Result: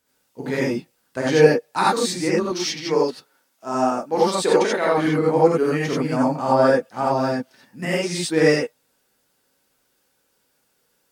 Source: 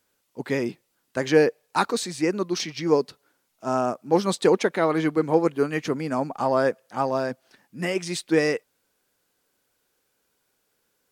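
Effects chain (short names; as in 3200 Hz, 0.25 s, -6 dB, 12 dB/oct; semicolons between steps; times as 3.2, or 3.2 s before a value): 2.42–4.98 HPF 360 Hz 6 dB/oct; non-linear reverb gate 0.11 s rising, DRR -5.5 dB; gain -2 dB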